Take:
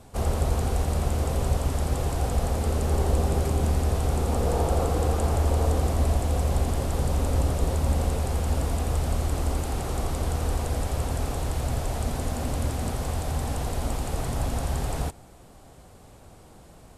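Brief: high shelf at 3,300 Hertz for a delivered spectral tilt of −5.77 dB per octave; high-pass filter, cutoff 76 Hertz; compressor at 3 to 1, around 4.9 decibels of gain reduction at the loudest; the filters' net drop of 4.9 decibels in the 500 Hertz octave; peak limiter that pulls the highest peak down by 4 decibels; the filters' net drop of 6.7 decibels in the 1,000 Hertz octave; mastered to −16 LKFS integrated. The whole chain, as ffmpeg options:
ffmpeg -i in.wav -af "highpass=76,equalizer=frequency=500:width_type=o:gain=-4,equalizer=frequency=1000:width_type=o:gain=-7.5,highshelf=frequency=3300:gain=-3,acompressor=threshold=-29dB:ratio=3,volume=18.5dB,alimiter=limit=-6dB:level=0:latency=1" out.wav

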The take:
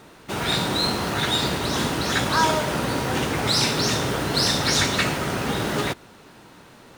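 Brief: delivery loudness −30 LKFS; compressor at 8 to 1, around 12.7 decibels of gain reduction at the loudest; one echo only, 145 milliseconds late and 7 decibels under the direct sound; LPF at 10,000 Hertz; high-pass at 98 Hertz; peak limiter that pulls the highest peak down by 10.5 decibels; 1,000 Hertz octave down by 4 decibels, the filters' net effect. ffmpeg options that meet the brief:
ffmpeg -i in.wav -af "highpass=98,lowpass=10000,equalizer=frequency=1000:width_type=o:gain=-5,acompressor=threshold=-31dB:ratio=8,alimiter=level_in=6.5dB:limit=-24dB:level=0:latency=1,volume=-6.5dB,aecho=1:1:145:0.447,volume=8.5dB" out.wav

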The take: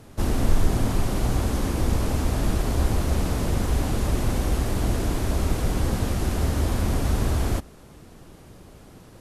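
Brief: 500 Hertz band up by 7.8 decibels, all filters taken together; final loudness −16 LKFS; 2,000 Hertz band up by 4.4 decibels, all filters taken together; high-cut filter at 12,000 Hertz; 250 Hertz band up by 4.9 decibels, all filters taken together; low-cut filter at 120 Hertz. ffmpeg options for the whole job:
ffmpeg -i in.wav -af "highpass=120,lowpass=12000,equalizer=frequency=250:width_type=o:gain=4,equalizer=frequency=500:width_type=o:gain=8.5,equalizer=frequency=2000:width_type=o:gain=5,volume=8dB" out.wav

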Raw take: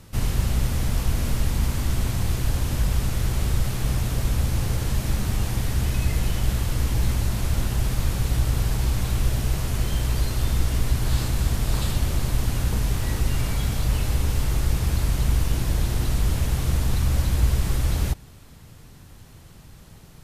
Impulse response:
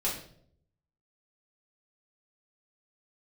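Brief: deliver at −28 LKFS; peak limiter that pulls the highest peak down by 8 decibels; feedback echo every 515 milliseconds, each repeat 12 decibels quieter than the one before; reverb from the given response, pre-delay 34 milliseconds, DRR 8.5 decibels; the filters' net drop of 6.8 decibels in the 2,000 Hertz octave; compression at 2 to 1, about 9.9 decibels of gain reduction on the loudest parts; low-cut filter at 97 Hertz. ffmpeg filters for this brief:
-filter_complex "[0:a]highpass=97,equalizer=frequency=2000:width_type=o:gain=-9,acompressor=threshold=-41dB:ratio=2,alimiter=level_in=8.5dB:limit=-24dB:level=0:latency=1,volume=-8.5dB,aecho=1:1:515|1030|1545:0.251|0.0628|0.0157,asplit=2[link_01][link_02];[1:a]atrim=start_sample=2205,adelay=34[link_03];[link_02][link_03]afir=irnorm=-1:irlink=0,volume=-15dB[link_04];[link_01][link_04]amix=inputs=2:normalize=0,volume=12dB"

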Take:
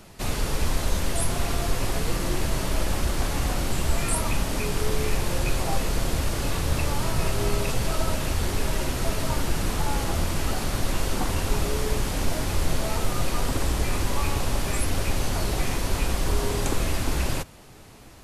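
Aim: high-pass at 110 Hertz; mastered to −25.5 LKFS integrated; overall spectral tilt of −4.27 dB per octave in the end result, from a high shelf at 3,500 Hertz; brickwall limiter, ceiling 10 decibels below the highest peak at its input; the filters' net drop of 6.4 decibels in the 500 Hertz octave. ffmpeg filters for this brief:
ffmpeg -i in.wav -af "highpass=110,equalizer=frequency=500:width_type=o:gain=-8.5,highshelf=frequency=3500:gain=-4,volume=9.5dB,alimiter=limit=-16.5dB:level=0:latency=1" out.wav

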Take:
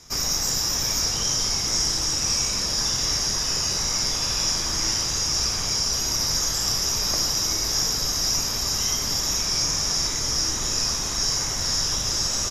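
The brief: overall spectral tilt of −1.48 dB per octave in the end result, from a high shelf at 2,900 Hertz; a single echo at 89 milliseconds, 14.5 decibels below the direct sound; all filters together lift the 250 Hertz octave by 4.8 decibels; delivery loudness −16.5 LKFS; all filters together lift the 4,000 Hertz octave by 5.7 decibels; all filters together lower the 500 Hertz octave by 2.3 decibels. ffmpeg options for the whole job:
ffmpeg -i in.wav -af "equalizer=frequency=250:width_type=o:gain=8,equalizer=frequency=500:width_type=o:gain=-6,highshelf=frequency=2900:gain=3,equalizer=frequency=4000:width_type=o:gain=5.5,aecho=1:1:89:0.188,volume=-0.5dB" out.wav

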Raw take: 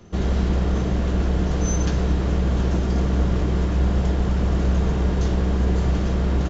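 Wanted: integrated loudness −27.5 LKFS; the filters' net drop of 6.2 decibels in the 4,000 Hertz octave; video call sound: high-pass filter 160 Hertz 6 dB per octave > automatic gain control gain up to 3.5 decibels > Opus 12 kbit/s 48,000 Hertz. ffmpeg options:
ffmpeg -i in.wav -af "highpass=frequency=160:poles=1,equalizer=frequency=4000:width_type=o:gain=-8.5,dynaudnorm=maxgain=3.5dB,volume=0.5dB" -ar 48000 -c:a libopus -b:a 12k out.opus

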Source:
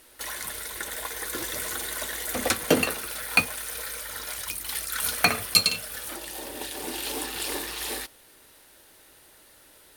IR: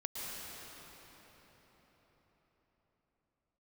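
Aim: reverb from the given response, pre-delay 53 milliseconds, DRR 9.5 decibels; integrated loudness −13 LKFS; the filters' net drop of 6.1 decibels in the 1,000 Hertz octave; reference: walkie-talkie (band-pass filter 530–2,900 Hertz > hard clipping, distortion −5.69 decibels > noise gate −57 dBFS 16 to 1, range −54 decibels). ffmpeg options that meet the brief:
-filter_complex "[0:a]equalizer=frequency=1000:width_type=o:gain=-8,asplit=2[link_01][link_02];[1:a]atrim=start_sample=2205,adelay=53[link_03];[link_02][link_03]afir=irnorm=-1:irlink=0,volume=-11.5dB[link_04];[link_01][link_04]amix=inputs=2:normalize=0,highpass=530,lowpass=2900,asoftclip=type=hard:threshold=-27dB,agate=range=-54dB:threshold=-57dB:ratio=16,volume=24dB"

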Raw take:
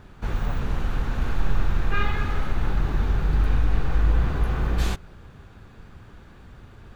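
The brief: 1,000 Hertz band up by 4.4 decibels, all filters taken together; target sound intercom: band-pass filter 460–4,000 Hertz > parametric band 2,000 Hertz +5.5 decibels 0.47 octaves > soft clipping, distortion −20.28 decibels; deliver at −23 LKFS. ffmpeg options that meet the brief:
ffmpeg -i in.wav -af "highpass=460,lowpass=4000,equalizer=frequency=1000:width_type=o:gain=5.5,equalizer=frequency=2000:width_type=o:width=0.47:gain=5.5,asoftclip=threshold=-18.5dB,volume=9.5dB" out.wav

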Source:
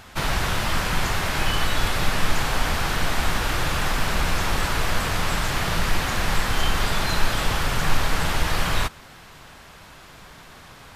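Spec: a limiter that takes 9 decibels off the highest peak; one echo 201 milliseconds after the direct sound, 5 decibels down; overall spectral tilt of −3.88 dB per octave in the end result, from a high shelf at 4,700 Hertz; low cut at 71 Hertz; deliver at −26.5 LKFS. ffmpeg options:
ffmpeg -i in.wav -af "highpass=71,highshelf=frequency=4700:gain=-7,alimiter=limit=-22dB:level=0:latency=1,aecho=1:1:201:0.562,volume=3dB" out.wav

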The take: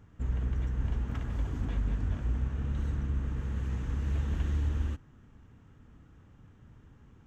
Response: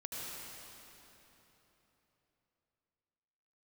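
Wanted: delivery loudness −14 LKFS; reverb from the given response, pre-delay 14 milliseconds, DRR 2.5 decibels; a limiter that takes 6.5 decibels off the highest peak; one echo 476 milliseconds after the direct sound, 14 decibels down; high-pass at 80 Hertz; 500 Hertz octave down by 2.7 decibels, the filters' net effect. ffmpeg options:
-filter_complex "[0:a]highpass=80,equalizer=frequency=500:width_type=o:gain=-3.5,alimiter=level_in=6dB:limit=-24dB:level=0:latency=1,volume=-6dB,aecho=1:1:476:0.2,asplit=2[link_01][link_02];[1:a]atrim=start_sample=2205,adelay=14[link_03];[link_02][link_03]afir=irnorm=-1:irlink=0,volume=-3.5dB[link_04];[link_01][link_04]amix=inputs=2:normalize=0,volume=22.5dB"

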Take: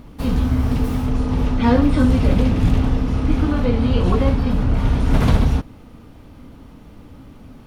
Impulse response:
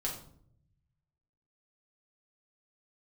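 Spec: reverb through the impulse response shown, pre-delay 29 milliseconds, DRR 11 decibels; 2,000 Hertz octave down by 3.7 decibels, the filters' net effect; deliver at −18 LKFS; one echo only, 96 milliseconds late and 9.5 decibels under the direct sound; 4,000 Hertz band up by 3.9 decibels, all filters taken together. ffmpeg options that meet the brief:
-filter_complex "[0:a]equalizer=frequency=2000:width_type=o:gain=-7,equalizer=frequency=4000:width_type=o:gain=7.5,aecho=1:1:96:0.335,asplit=2[link_01][link_02];[1:a]atrim=start_sample=2205,adelay=29[link_03];[link_02][link_03]afir=irnorm=-1:irlink=0,volume=-13.5dB[link_04];[link_01][link_04]amix=inputs=2:normalize=0,volume=-0.5dB"

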